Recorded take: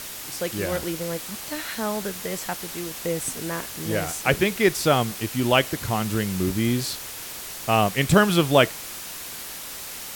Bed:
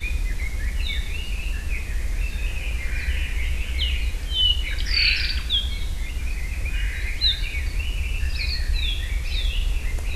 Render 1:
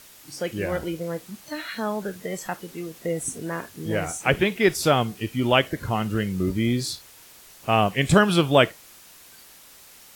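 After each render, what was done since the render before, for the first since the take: noise print and reduce 13 dB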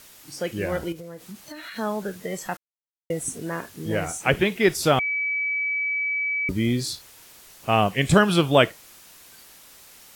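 0.92–1.76 compressor 12:1, threshold -34 dBFS; 2.57–3.1 mute; 4.99–6.49 bleep 2290 Hz -22.5 dBFS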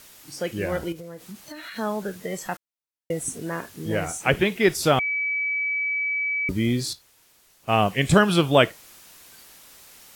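6.93–7.8 upward expander, over -37 dBFS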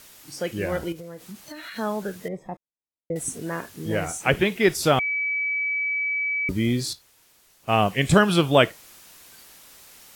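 2.28–3.16 running mean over 30 samples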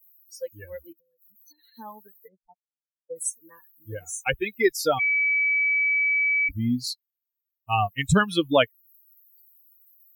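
per-bin expansion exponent 3; in parallel at +2.5 dB: compressor, threshold -34 dBFS, peak gain reduction 17.5 dB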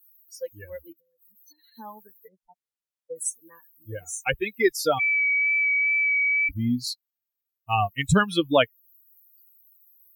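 wow and flutter 16 cents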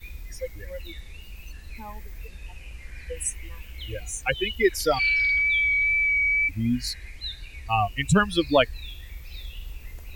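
add bed -14 dB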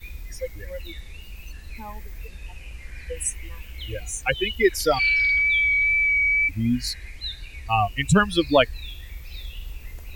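gain +2 dB

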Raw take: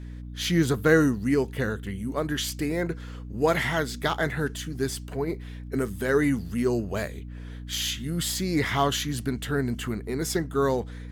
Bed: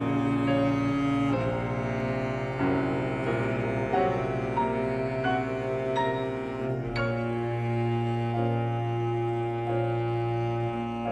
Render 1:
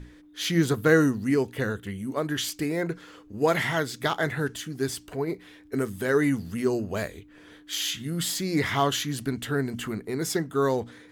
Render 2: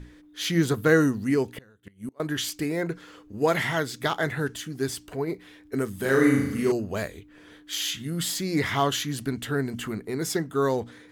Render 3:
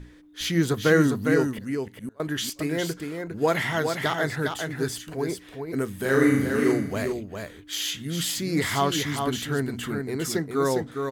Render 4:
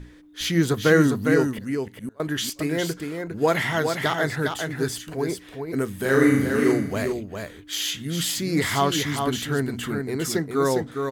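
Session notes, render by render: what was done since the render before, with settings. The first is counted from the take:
notches 60/120/180/240 Hz
1.52–2.2 flipped gate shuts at -25 dBFS, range -27 dB; 5.96–6.72 flutter echo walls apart 6.4 m, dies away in 0.82 s
echo 0.406 s -5.5 dB
gain +2 dB

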